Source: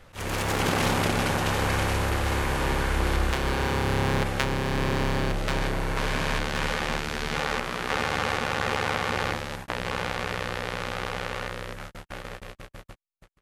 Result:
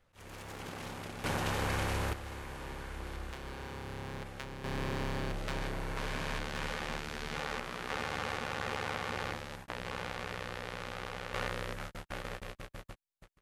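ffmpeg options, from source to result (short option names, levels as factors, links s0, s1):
-af "asetnsamples=n=441:p=0,asendcmd='1.24 volume volume -8dB;2.13 volume volume -17.5dB;4.64 volume volume -10dB;11.34 volume volume -3dB',volume=0.112"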